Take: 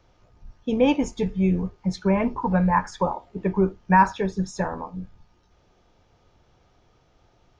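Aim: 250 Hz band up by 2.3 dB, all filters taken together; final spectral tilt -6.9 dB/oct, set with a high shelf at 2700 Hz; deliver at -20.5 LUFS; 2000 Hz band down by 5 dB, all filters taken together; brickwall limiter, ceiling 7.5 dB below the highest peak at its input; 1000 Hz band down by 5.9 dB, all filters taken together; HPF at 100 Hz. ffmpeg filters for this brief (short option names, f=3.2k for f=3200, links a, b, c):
-af "highpass=100,equalizer=f=250:t=o:g=4,equalizer=f=1k:t=o:g=-6,equalizer=f=2k:t=o:g=-6,highshelf=f=2.7k:g=4.5,volume=5.5dB,alimiter=limit=-9.5dB:level=0:latency=1"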